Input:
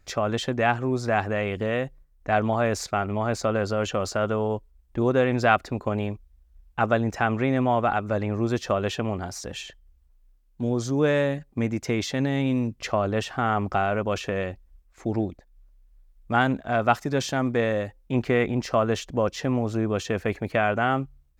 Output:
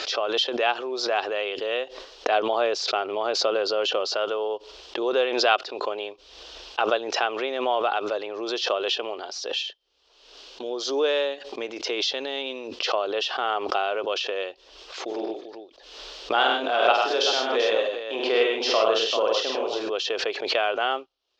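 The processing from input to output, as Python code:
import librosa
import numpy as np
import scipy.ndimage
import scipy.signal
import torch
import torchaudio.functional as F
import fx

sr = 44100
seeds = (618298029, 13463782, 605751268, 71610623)

y = fx.low_shelf(x, sr, hz=380.0, db=6.5, at=(2.31, 4.06))
y = fx.echo_multitap(y, sr, ms=(46, 99, 126, 152, 390), db=(-4.0, -4.0, -6.5, -9.5, -9.5), at=(15.07, 19.88), fade=0.02)
y = scipy.signal.sosfilt(scipy.signal.ellip(3, 1.0, 40, [400.0, 5100.0], 'bandpass', fs=sr, output='sos'), y)
y = fx.high_shelf_res(y, sr, hz=2500.0, db=6.0, q=3.0)
y = fx.pre_swell(y, sr, db_per_s=55.0)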